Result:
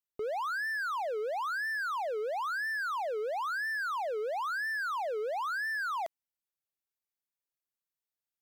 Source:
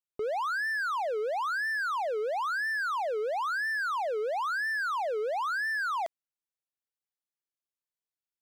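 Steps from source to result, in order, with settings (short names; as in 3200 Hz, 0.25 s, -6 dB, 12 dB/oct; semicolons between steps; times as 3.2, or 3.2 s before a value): bell 15000 Hz +7.5 dB 0.46 oct; gain -3 dB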